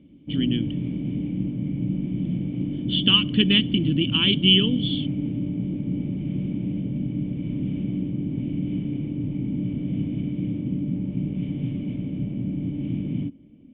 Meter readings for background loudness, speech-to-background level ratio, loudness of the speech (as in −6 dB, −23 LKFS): −28.0 LKFS, 7.5 dB, −20.5 LKFS